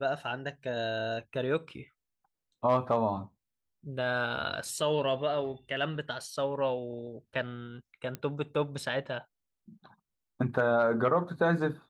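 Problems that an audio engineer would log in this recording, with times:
8.15 pop -22 dBFS

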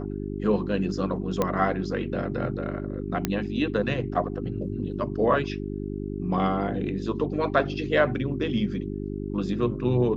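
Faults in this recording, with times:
hum 50 Hz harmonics 8 -32 dBFS
1.42 pop -11 dBFS
3.25 pop -9 dBFS

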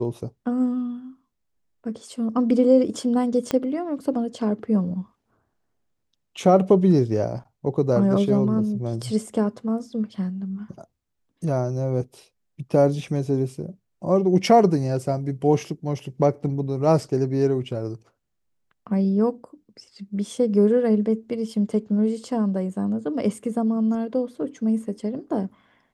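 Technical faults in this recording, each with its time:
3.51 pop -11 dBFS

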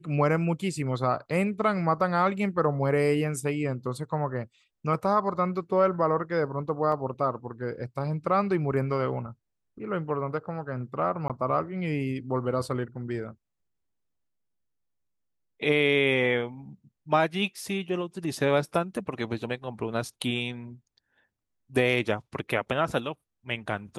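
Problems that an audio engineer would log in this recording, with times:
6.92 gap 2.8 ms
11.28–11.3 gap 17 ms

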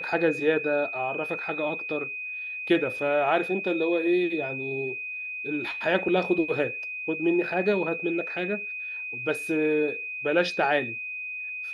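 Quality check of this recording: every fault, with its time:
tone 2500 Hz -32 dBFS

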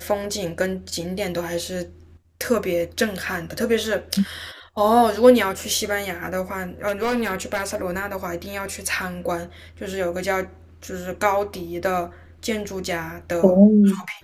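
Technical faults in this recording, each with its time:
6.87–7.82 clipped -18.5 dBFS

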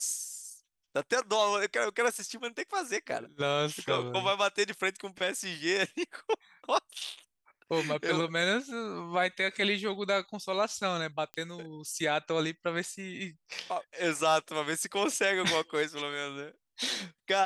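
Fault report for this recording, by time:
11.34 pop -23 dBFS

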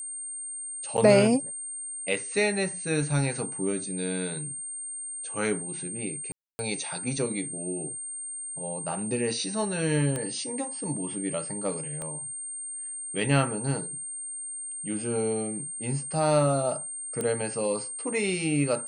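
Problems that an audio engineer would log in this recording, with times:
tone 8700 Hz -34 dBFS
0.97–0.98 gap 8.7 ms
6.32–6.59 gap 0.27 s
10.16 pop -18 dBFS
12.02 pop -23 dBFS
17.21 pop -17 dBFS

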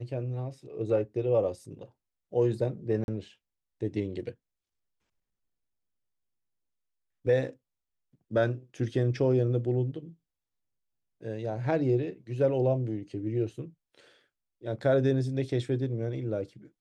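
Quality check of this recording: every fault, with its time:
3.04–3.08 gap 41 ms

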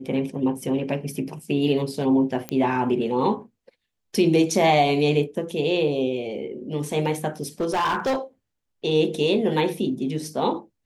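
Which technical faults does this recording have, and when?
2.49 pop -13 dBFS
7.6–8.17 clipped -19.5 dBFS

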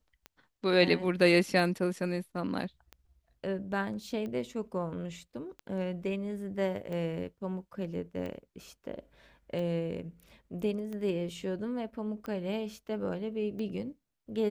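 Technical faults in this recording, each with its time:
tick 45 rpm -28 dBFS

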